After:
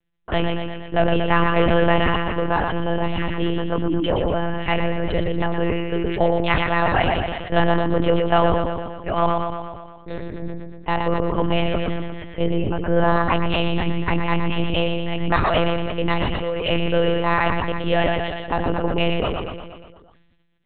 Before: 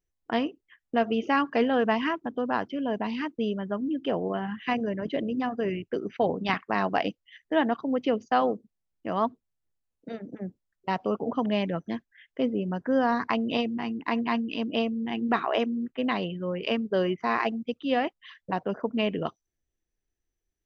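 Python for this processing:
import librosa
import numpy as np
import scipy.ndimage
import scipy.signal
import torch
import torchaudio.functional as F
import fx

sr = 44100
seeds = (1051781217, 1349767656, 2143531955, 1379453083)

p1 = fx.high_shelf(x, sr, hz=2000.0, db=4.0)
p2 = fx.hum_notches(p1, sr, base_hz=60, count=4)
p3 = 10.0 ** (-23.5 / 20.0) * np.tanh(p2 / 10.0 ** (-23.5 / 20.0))
p4 = p2 + (p3 * librosa.db_to_amplitude(-7.5))
p5 = fx.echo_feedback(p4, sr, ms=118, feedback_pct=56, wet_db=-5.0)
p6 = fx.lpc_monotone(p5, sr, seeds[0], pitch_hz=170.0, order=10)
p7 = fx.sustainer(p6, sr, db_per_s=36.0)
y = p7 * librosa.db_to_amplitude(3.5)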